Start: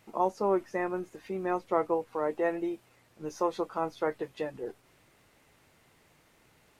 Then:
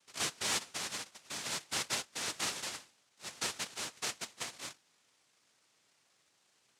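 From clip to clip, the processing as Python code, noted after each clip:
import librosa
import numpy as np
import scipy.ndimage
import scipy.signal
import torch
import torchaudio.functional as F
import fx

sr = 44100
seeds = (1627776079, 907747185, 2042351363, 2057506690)

y = fx.hum_notches(x, sr, base_hz=50, count=7)
y = fx.noise_vocoder(y, sr, seeds[0], bands=1)
y = y * 10.0 ** (-8.0 / 20.0)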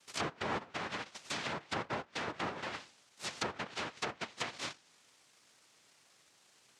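y = fx.env_lowpass_down(x, sr, base_hz=1200.0, full_db=-34.0)
y = y * 10.0 ** (6.0 / 20.0)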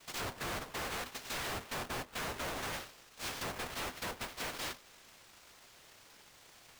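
y = fx.halfwave_hold(x, sr)
y = fx.tube_stage(y, sr, drive_db=43.0, bias=0.5)
y = y * np.sign(np.sin(2.0 * np.pi * 250.0 * np.arange(len(y)) / sr))
y = y * 10.0 ** (5.5 / 20.0)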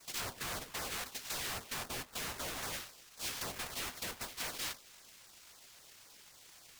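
y = fx.peak_eq(x, sr, hz=16000.0, db=8.0, octaves=2.2)
y = fx.filter_lfo_notch(y, sr, shape='saw_down', hz=3.8, low_hz=240.0, high_hz=3600.0, q=2.0)
y = y * 10.0 ** (-3.5 / 20.0)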